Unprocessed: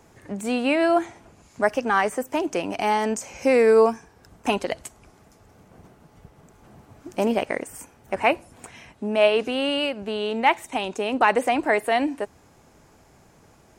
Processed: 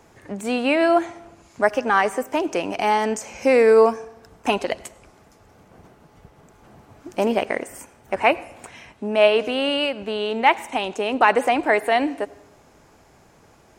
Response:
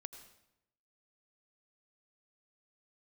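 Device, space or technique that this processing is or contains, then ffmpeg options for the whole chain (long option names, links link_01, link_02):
filtered reverb send: -filter_complex "[0:a]asplit=2[link_01][link_02];[link_02]highpass=250,lowpass=6800[link_03];[1:a]atrim=start_sample=2205[link_04];[link_03][link_04]afir=irnorm=-1:irlink=0,volume=-3.5dB[link_05];[link_01][link_05]amix=inputs=2:normalize=0"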